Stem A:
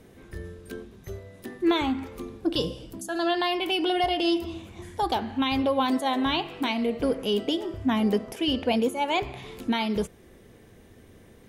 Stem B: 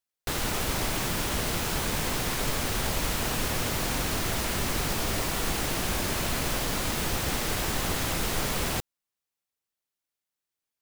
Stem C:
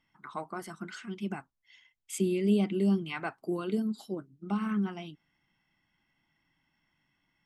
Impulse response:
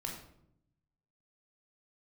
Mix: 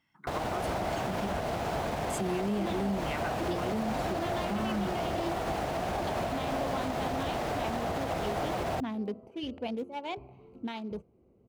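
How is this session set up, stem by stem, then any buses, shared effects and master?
−10.5 dB, 0.95 s, no send, adaptive Wiener filter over 25 samples; high-shelf EQ 8,300 Hz −8.5 dB
−2.5 dB, 0.00 s, no send, low-pass filter 1,600 Hz 6 dB per octave; parametric band 690 Hz +12.5 dB 0.63 octaves
+0.5 dB, 0.00 s, no send, no processing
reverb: not used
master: high-pass filter 59 Hz; brickwall limiter −23 dBFS, peak gain reduction 8.5 dB

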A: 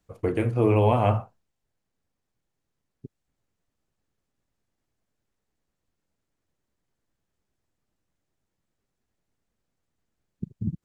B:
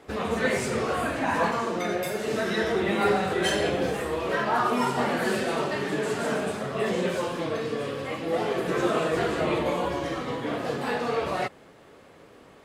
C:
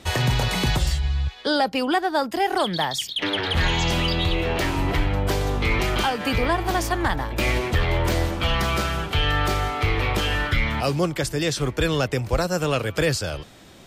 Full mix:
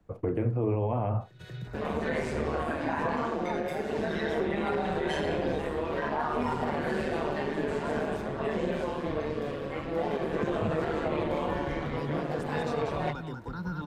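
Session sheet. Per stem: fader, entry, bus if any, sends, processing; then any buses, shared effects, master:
−1.0 dB, 0.00 s, no send, no echo send, high-shelf EQ 2,100 Hz −11 dB; multiband upward and downward compressor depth 40%
+0.5 dB, 1.65 s, no send, echo send −18 dB, high-shelf EQ 9,600 Hz −9.5 dB; notch filter 1,300 Hz, Q 9.3; amplitude modulation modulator 150 Hz, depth 50%
−16.0 dB, 1.15 s, no send, echo send −4.5 dB, brickwall limiter −15.5 dBFS, peak gain reduction 6 dB; hollow resonant body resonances 200/920/1,400/3,700 Hz, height 14 dB, ringing for 25 ms; step-sequenced phaser 3 Hz 240–2,300 Hz; automatic ducking −19 dB, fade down 1.05 s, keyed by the first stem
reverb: not used
echo: single-tap delay 190 ms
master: high-shelf EQ 3,000 Hz −10 dB; brickwall limiter −19.5 dBFS, peak gain reduction 9 dB

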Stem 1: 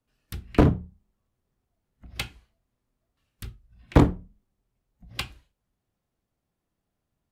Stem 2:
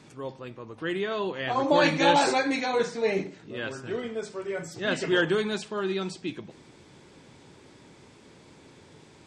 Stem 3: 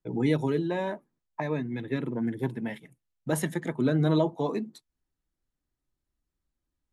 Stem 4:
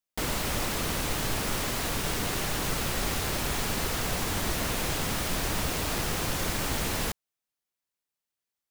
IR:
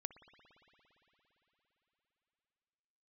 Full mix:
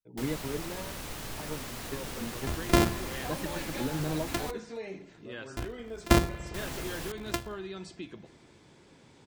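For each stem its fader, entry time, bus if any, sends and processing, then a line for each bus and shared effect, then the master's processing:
−1.0 dB, 2.15 s, bus A, send −3.5 dB, samples sorted by size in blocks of 128 samples
−5.0 dB, 1.75 s, bus A, no send, downward compressor 5 to 1, threshold −32 dBFS, peak gain reduction 14.5 dB
−0.5 dB, 0.00 s, bus A, no send, expander for the loud parts 2.5 to 1, over −33 dBFS
−10.0 dB, 0.00 s, muted 0:04.51–0:06.54, no bus, no send, no processing
bus A: 0.0 dB, downward compressor 3 to 1, threshold −31 dBFS, peak gain reduction 14.5 dB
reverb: on, RT60 4.1 s, pre-delay 57 ms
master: no processing

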